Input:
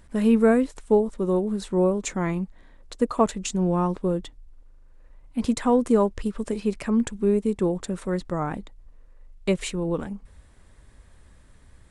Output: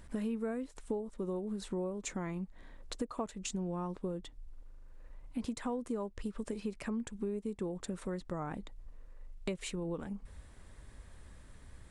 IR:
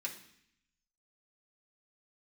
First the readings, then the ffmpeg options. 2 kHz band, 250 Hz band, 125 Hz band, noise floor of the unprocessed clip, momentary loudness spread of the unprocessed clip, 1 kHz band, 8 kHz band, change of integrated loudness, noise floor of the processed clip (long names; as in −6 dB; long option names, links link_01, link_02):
−12.5 dB, −14.5 dB, −13.0 dB, −53 dBFS, 11 LU, −15.5 dB, −10.0 dB, −15.0 dB, −57 dBFS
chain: -af "acompressor=threshold=-35dB:ratio=5,volume=-1dB"